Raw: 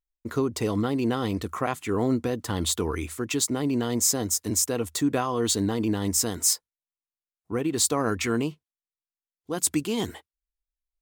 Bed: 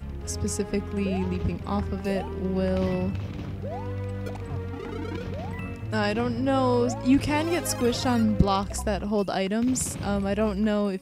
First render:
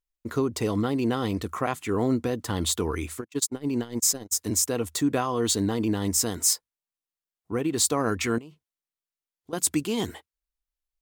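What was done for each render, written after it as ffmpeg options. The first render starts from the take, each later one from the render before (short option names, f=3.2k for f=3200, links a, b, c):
-filter_complex "[0:a]asplit=3[a][b][c];[a]afade=t=out:st=3.2:d=0.02[d];[b]agate=range=-44dB:threshold=-26dB:ratio=16:release=100:detection=peak,afade=t=in:st=3.2:d=0.02,afade=t=out:st=4.31:d=0.02[e];[c]afade=t=in:st=4.31:d=0.02[f];[d][e][f]amix=inputs=3:normalize=0,asettb=1/sr,asplit=3[g][h][i];[g]atrim=end=8.384[j];[h]atrim=start=8.38:end=9.53,asetpts=PTS-STARTPTS,afade=t=in:d=0.004:c=qsin,afade=t=out:st=1.146:d=0.004:c=qsin,acompressor=threshold=-40dB:ratio=10:attack=3.2:release=140:knee=1:detection=peak[k];[i]atrim=start=9.526[l];[j][k]acrossfade=d=0.004:c1=hsin:c2=qsin[m];[m][l]acrossfade=d=0.004:c1=qsin:c2=hsin"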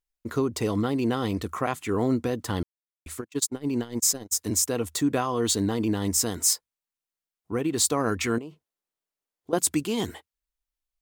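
-filter_complex "[0:a]asettb=1/sr,asplit=3[a][b][c];[a]atrim=end=8.384[d];[b]atrim=start=8.38:end=9.59,asetpts=PTS-STARTPTS,afade=t=in:d=0.004:c=qsin,afade=t=out:st=1.206:d=0.004:c=qsin,equalizer=f=500:w=0.52:g=8[e];[c]atrim=start=9.586[f];[d][e]acrossfade=d=0.004:c1=hsin:c2=qsin[g];[g][f]acrossfade=d=0.004:c1=qsin:c2=hsin,asplit=3[h][i][j];[h]atrim=end=2.63,asetpts=PTS-STARTPTS,afade=t=out:st=2.626:d=0.004:c=hsin[k];[i]atrim=start=2.63:end=3.06,asetpts=PTS-STARTPTS,volume=0[l];[j]atrim=start=3.06,asetpts=PTS-STARTPTS,afade=t=in:d=0.004:c=hsin[m];[k][l][m]concat=n=3:v=0:a=1"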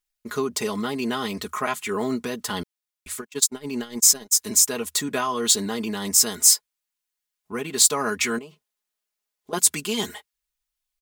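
-af "tiltshelf=f=860:g=-5.5,aecho=1:1:4.8:0.76"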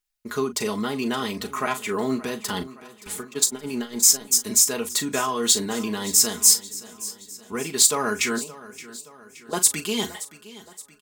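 -filter_complex "[0:a]asplit=2[a][b];[b]adelay=38,volume=-11.5dB[c];[a][c]amix=inputs=2:normalize=0,aecho=1:1:572|1144|1716|2288|2860:0.133|0.0707|0.0375|0.0199|0.0105"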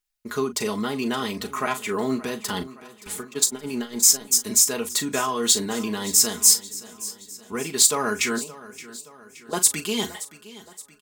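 -af anull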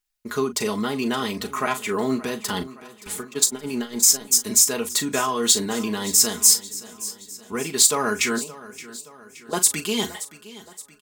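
-af "volume=1.5dB,alimiter=limit=-3dB:level=0:latency=1"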